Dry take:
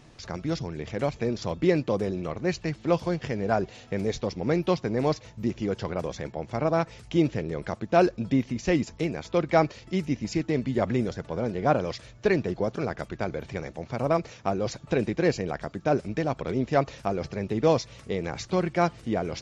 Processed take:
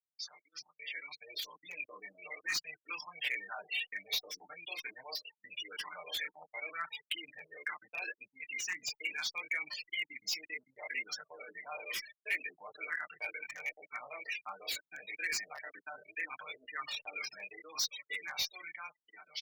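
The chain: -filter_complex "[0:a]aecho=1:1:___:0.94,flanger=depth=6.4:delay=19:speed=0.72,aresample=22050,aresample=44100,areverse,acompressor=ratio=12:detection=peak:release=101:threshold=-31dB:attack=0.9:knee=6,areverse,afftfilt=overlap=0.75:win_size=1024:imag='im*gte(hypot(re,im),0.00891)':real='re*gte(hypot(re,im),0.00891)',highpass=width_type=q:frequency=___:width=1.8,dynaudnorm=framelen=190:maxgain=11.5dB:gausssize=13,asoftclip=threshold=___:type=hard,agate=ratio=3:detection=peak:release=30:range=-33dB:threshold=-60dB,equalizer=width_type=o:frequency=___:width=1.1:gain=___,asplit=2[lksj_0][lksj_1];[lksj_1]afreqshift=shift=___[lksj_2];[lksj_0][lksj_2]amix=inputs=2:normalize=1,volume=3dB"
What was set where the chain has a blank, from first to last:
6.6, 2500, -30dB, 6700, -2.5, -2.1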